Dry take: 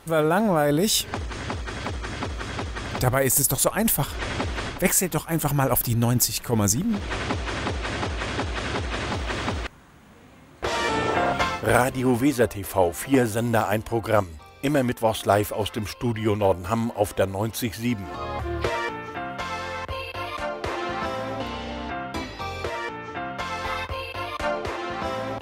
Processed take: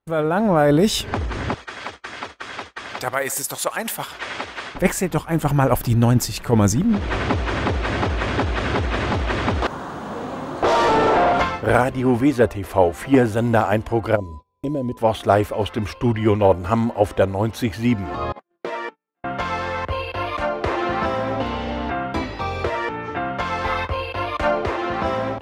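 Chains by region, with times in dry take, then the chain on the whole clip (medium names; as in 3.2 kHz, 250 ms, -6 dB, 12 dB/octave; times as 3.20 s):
1.54–4.75 s: high-pass 1.4 kHz 6 dB/octave + delay 125 ms -20.5 dB
9.62–11.41 s: peaking EQ 2.2 kHz -14.5 dB 1.1 oct + compression 2:1, threshold -36 dBFS + overdrive pedal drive 29 dB, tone 3.3 kHz, clips at -14 dBFS
14.15–14.97 s: FFT filter 550 Hz 0 dB, 1.3 kHz -28 dB, 2.2 kHz -16 dB, 3.8 kHz -6 dB + compression 3:1, threshold -26 dBFS + whistle 1 kHz -46 dBFS
18.32–19.24 s: steep high-pass 160 Hz 48 dB/octave + gate -28 dBFS, range -26 dB + compression 3:1, threshold -31 dBFS
whole clip: gate -39 dBFS, range -31 dB; low-pass 2.2 kHz 6 dB/octave; level rider gain up to 7 dB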